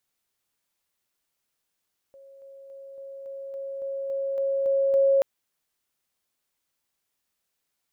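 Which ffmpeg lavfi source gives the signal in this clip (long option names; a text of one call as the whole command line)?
ffmpeg -f lavfi -i "aevalsrc='pow(10,(-46.5+3*floor(t/0.28))/20)*sin(2*PI*547*t)':duration=3.08:sample_rate=44100" out.wav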